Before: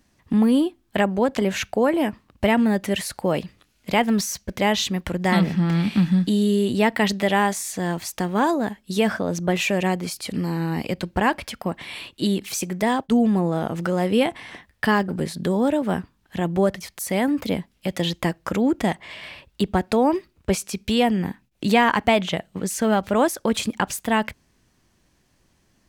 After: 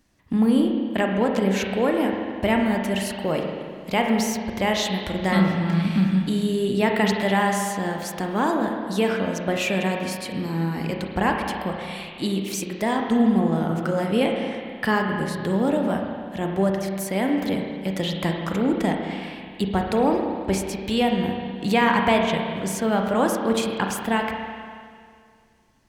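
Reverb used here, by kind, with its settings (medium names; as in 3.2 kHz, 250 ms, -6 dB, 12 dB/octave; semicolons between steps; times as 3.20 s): spring tank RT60 2.1 s, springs 31/42 ms, chirp 25 ms, DRR 1.5 dB; trim -3 dB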